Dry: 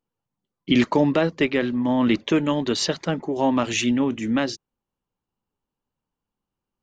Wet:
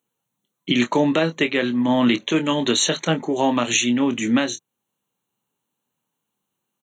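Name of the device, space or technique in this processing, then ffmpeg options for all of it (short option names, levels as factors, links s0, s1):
PA system with an anti-feedback notch: -filter_complex "[0:a]highpass=f=120:w=0.5412,highpass=f=120:w=1.3066,asuperstop=centerf=5000:order=20:qfactor=3.5,highshelf=f=2400:g=10.5,asplit=2[s0][s1];[s1]adelay=25,volume=0.335[s2];[s0][s2]amix=inputs=2:normalize=0,alimiter=limit=0.266:level=0:latency=1:release=473,volume=1.5"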